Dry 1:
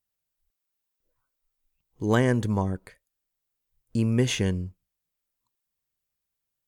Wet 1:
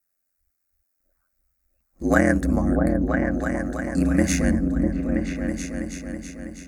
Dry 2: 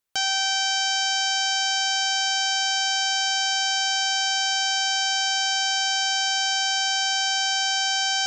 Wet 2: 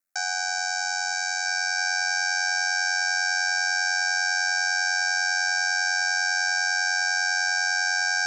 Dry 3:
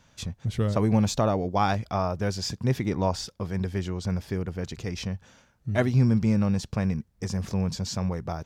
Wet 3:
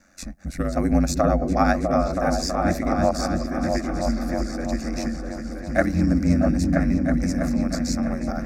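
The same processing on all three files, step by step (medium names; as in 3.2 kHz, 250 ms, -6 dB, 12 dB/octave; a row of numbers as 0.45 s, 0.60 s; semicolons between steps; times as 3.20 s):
bass shelf 180 Hz -4.5 dB; ring modulator 45 Hz; static phaser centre 640 Hz, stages 8; delay with an opening low-pass 325 ms, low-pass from 200 Hz, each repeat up 2 oct, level 0 dB; normalise loudness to -23 LUFS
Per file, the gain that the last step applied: +11.0 dB, +3.0 dB, +9.5 dB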